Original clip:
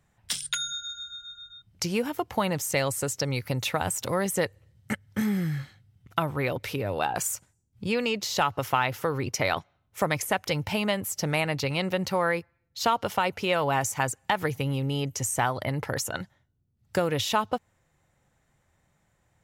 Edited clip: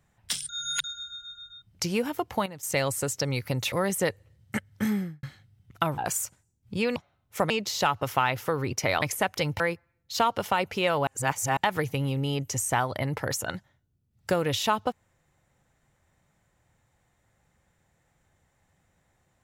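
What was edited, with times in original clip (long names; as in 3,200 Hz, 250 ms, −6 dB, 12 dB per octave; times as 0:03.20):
0:00.49–0:00.84: reverse
0:02.12–0:02.97: duck −14 dB, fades 0.34 s logarithmic
0:03.72–0:04.08: remove
0:05.24–0:05.59: fade out and dull
0:06.34–0:07.08: remove
0:09.58–0:10.12: move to 0:08.06
0:10.70–0:12.26: remove
0:13.73–0:14.23: reverse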